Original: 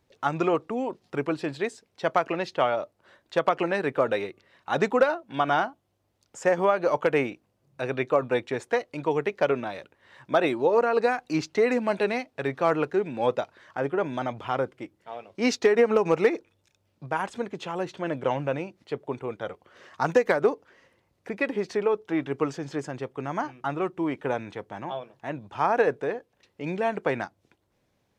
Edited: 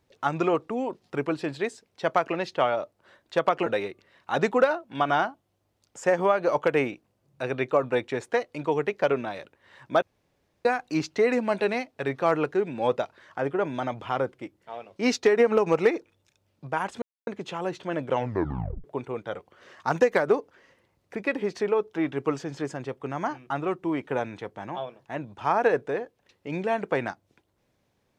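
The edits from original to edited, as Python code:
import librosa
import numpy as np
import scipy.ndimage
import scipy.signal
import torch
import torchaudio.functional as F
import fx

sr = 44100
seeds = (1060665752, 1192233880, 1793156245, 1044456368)

y = fx.edit(x, sr, fx.cut(start_s=3.66, length_s=0.39),
    fx.room_tone_fill(start_s=10.41, length_s=0.63),
    fx.insert_silence(at_s=17.41, length_s=0.25),
    fx.tape_stop(start_s=18.31, length_s=0.67), tone=tone)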